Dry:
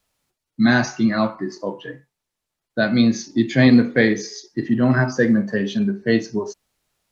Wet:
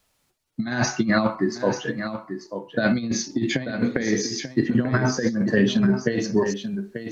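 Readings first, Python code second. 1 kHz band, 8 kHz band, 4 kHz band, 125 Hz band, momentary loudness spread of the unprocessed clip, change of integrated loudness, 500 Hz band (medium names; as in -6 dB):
-1.5 dB, no reading, -1.0 dB, -3.5 dB, 15 LU, -4.5 dB, -2.0 dB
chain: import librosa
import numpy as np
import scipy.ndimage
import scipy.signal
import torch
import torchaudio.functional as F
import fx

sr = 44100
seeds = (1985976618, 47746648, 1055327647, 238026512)

y = fx.over_compress(x, sr, threshold_db=-20.0, ratio=-0.5)
y = y + 10.0 ** (-9.5 / 20.0) * np.pad(y, (int(889 * sr / 1000.0), 0))[:len(y)]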